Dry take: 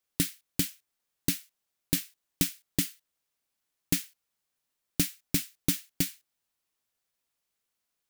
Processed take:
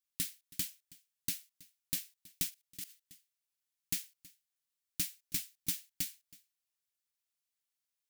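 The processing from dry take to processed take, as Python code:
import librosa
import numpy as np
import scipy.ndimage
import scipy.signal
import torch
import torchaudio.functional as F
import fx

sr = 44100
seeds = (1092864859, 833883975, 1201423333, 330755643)

y = x + 10.0 ** (-22.0 / 20.0) * np.pad(x, (int(323 * sr / 1000.0), 0))[:len(x)]
y = fx.level_steps(y, sr, step_db=17, at=(2.49, 2.89), fade=0.02)
y = fx.tone_stack(y, sr, knobs='5-5-5')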